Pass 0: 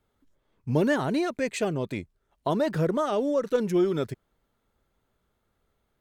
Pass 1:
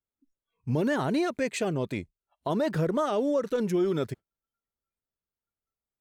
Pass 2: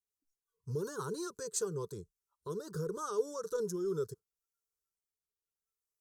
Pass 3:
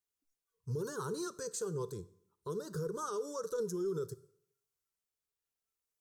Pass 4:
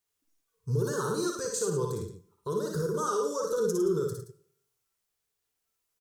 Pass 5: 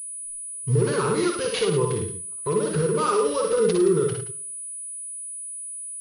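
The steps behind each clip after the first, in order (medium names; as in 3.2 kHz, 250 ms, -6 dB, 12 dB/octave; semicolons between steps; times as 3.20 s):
spectral noise reduction 24 dB; peak limiter -18.5 dBFS, peak gain reduction 5.5 dB
FFT filter 180 Hz 0 dB, 260 Hz -17 dB, 440 Hz +11 dB, 680 Hz -21 dB, 1 kHz +7 dB, 1.5 kHz +3 dB, 2.2 kHz -27 dB, 4.1 kHz +3 dB, 5.8 kHz +14 dB; rotary cabinet horn 5.5 Hz, later 0.75 Hz, at 1.45 s; trim -9 dB
peak limiter -30.5 dBFS, peak gain reduction 9 dB; reverberation RT60 0.70 s, pre-delay 3 ms, DRR 14.5 dB; trim +1 dB
multi-tap echo 56/65/105/173 ms -4.5/-8/-9/-13 dB; trim +6.5 dB
sample-and-hold 4×; class-D stage that switches slowly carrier 9.9 kHz; trim +7.5 dB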